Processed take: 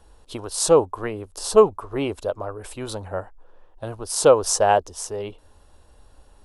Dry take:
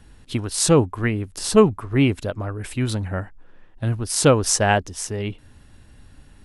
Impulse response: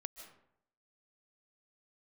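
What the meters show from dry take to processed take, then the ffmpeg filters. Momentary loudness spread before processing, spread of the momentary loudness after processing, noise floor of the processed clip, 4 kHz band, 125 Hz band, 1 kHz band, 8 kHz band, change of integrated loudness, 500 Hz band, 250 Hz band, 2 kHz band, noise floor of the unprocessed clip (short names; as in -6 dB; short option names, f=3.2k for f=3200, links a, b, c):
13 LU, 18 LU, -54 dBFS, -3.5 dB, -13.0 dB, +2.0 dB, -2.5 dB, -0.5 dB, +2.0 dB, -9.0 dB, -7.0 dB, -50 dBFS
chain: -af "equalizer=f=125:t=o:w=1:g=-12,equalizer=f=250:t=o:w=1:g=-8,equalizer=f=500:t=o:w=1:g=7,equalizer=f=1k:t=o:w=1:g=6,equalizer=f=2k:t=o:w=1:g=-10,volume=-2dB"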